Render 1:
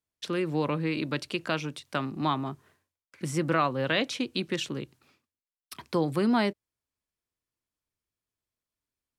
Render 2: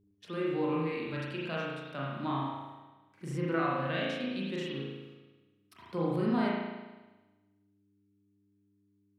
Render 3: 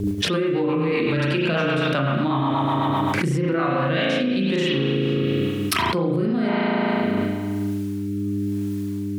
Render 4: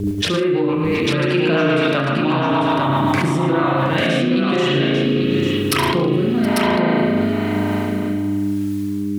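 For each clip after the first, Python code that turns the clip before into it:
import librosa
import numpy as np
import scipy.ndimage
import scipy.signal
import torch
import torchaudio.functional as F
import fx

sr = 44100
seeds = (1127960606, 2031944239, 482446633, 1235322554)

y1 = fx.dmg_buzz(x, sr, base_hz=100.0, harmonics=4, level_db=-60.0, tilt_db=-3, odd_only=False)
y1 = fx.rev_spring(y1, sr, rt60_s=1.2, pass_ms=(36,), chirp_ms=75, drr_db=-5.0)
y1 = fx.hpss(y1, sr, part='percussive', gain_db=-10)
y1 = y1 * 10.0 ** (-8.5 / 20.0)
y2 = fx.rotary_switch(y1, sr, hz=8.0, then_hz=1.0, switch_at_s=3.36)
y2 = fx.env_flatten(y2, sr, amount_pct=100)
y2 = y2 * 10.0 ** (7.0 / 20.0)
y3 = fx.echo_multitap(y2, sr, ms=(69, 113, 152, 721, 846), db=(-11.0, -12.5, -20.0, -19.0, -4.5))
y3 = y3 * 10.0 ** (2.5 / 20.0)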